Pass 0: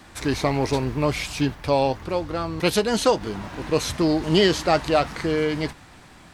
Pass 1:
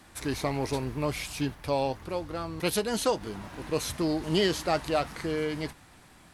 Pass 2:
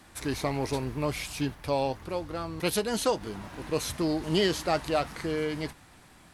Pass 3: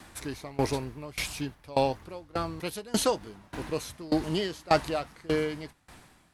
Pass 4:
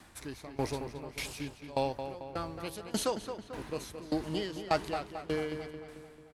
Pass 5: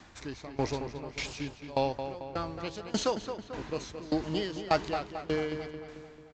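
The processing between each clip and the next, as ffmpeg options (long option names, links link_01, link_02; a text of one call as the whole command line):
ffmpeg -i in.wav -af "equalizer=frequency=11000:width_type=o:width=0.61:gain=9.5,volume=-7.5dB" out.wav
ffmpeg -i in.wav -af anull out.wav
ffmpeg -i in.wav -af "aeval=exprs='val(0)*pow(10,-23*if(lt(mod(1.7*n/s,1),2*abs(1.7)/1000),1-mod(1.7*n/s,1)/(2*abs(1.7)/1000),(mod(1.7*n/s,1)-2*abs(1.7)/1000)/(1-2*abs(1.7)/1000))/20)':channel_layout=same,volume=6dB" out.wav
ffmpeg -i in.wav -filter_complex "[0:a]asplit=2[link_01][link_02];[link_02]adelay=221,lowpass=frequency=3600:poles=1,volume=-8.5dB,asplit=2[link_03][link_04];[link_04]adelay=221,lowpass=frequency=3600:poles=1,volume=0.55,asplit=2[link_05][link_06];[link_06]adelay=221,lowpass=frequency=3600:poles=1,volume=0.55,asplit=2[link_07][link_08];[link_08]adelay=221,lowpass=frequency=3600:poles=1,volume=0.55,asplit=2[link_09][link_10];[link_10]adelay=221,lowpass=frequency=3600:poles=1,volume=0.55,asplit=2[link_11][link_12];[link_12]adelay=221,lowpass=frequency=3600:poles=1,volume=0.55,asplit=2[link_13][link_14];[link_14]adelay=221,lowpass=frequency=3600:poles=1,volume=0.55[link_15];[link_01][link_03][link_05][link_07][link_09][link_11][link_13][link_15]amix=inputs=8:normalize=0,volume=-6dB" out.wav
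ffmpeg -i in.wav -af "aresample=16000,aresample=44100,volume=2.5dB" out.wav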